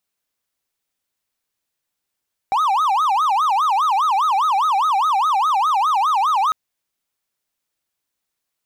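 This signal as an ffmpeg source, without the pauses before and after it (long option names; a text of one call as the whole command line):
ffmpeg -f lavfi -i "aevalsrc='0.237*(1-4*abs(mod((1023*t-257/(2*PI*4.9)*sin(2*PI*4.9*t))+0.25,1)-0.5))':duration=4:sample_rate=44100" out.wav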